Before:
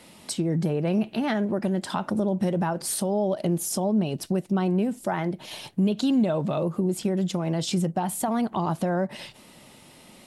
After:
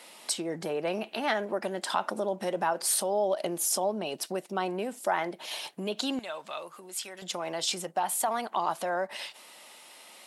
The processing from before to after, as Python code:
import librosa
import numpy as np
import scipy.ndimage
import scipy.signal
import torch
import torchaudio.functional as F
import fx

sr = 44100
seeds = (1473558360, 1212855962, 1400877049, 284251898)

y = fx.highpass(x, sr, hz=fx.steps((0.0, 550.0), (6.19, 1400.0), (7.22, 690.0)), slope=12)
y = F.gain(torch.from_numpy(y), 2.0).numpy()